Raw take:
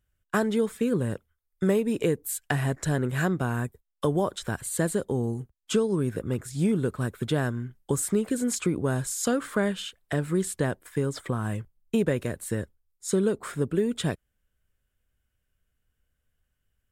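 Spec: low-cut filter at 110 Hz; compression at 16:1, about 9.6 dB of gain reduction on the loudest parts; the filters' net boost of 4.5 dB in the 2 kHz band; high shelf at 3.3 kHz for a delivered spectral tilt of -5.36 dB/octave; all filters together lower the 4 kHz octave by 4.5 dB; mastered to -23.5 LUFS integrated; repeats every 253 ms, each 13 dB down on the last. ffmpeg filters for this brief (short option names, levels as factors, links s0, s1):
-af "highpass=110,equalizer=f=2000:t=o:g=9,highshelf=f=3300:g=-8,equalizer=f=4000:t=o:g=-4.5,acompressor=threshold=0.0355:ratio=16,aecho=1:1:253|506|759:0.224|0.0493|0.0108,volume=4.22"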